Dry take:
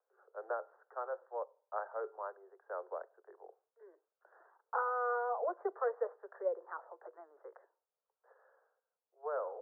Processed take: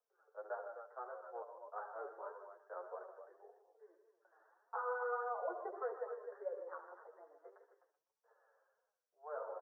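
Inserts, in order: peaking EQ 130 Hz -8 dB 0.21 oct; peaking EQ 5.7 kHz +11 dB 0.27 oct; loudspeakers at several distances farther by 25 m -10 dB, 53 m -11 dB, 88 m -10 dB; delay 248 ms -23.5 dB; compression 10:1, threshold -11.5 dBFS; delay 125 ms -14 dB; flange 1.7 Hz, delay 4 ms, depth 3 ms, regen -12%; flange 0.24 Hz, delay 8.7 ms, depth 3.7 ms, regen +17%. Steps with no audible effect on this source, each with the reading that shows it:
peaking EQ 130 Hz: input has nothing below 320 Hz; peaking EQ 5.7 kHz: input has nothing above 1.6 kHz; compression, threshold -11.5 dBFS: peak at its input -22.0 dBFS

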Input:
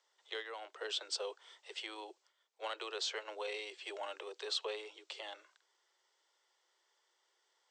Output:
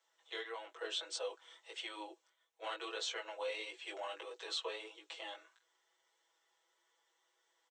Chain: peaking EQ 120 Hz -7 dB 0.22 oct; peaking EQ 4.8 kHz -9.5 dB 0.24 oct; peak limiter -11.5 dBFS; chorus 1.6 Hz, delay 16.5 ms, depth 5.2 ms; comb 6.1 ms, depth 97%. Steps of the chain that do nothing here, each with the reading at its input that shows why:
peaking EQ 120 Hz: input has nothing below 290 Hz; peak limiter -11.5 dBFS: peak at its input -26.0 dBFS

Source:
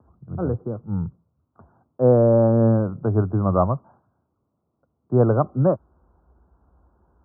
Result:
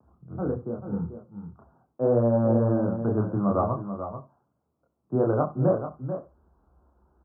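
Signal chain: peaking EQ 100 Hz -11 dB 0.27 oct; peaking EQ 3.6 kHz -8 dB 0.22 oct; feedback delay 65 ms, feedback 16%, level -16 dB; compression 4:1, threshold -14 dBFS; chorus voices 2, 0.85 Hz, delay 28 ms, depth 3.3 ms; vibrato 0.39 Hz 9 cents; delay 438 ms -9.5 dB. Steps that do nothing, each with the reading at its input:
peaking EQ 3.6 kHz: input has nothing above 1.3 kHz

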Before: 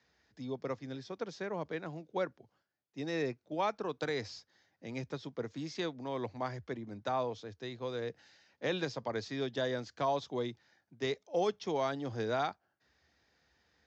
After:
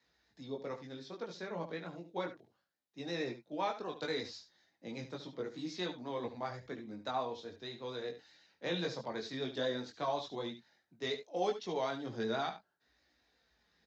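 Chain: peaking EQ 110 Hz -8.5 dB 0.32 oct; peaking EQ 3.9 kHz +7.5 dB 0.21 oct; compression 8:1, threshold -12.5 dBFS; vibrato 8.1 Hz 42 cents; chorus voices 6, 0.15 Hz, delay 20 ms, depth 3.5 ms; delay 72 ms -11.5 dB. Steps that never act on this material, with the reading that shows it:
compression, threshold -12.5 dBFS: peak at its input -20.5 dBFS

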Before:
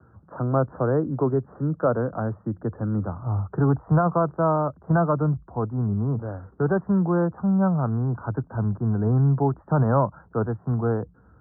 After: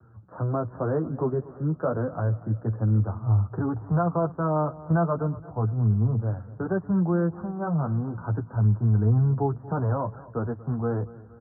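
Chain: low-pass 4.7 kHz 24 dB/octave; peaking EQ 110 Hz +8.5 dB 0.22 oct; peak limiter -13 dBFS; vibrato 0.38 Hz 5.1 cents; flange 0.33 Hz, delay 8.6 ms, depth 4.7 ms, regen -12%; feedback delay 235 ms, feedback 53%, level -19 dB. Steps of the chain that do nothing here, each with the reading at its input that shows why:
low-pass 4.7 kHz: input has nothing above 1.6 kHz

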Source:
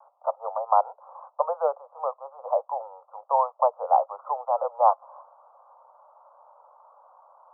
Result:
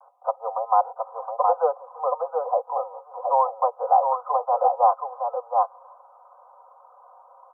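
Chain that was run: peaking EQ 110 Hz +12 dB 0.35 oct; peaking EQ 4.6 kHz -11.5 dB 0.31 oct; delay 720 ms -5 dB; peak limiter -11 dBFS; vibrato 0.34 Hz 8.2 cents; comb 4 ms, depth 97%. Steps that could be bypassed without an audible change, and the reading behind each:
peaking EQ 110 Hz: input has nothing below 400 Hz; peaking EQ 4.6 kHz: input has nothing above 1.4 kHz

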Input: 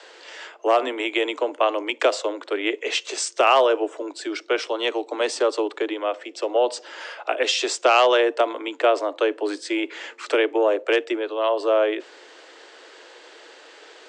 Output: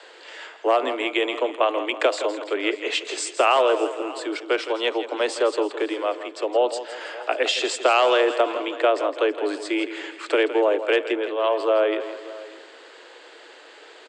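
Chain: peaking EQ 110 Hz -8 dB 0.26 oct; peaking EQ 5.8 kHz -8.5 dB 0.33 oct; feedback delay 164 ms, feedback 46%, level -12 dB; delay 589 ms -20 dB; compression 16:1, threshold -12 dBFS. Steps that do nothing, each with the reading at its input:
peaking EQ 110 Hz: input has nothing below 240 Hz

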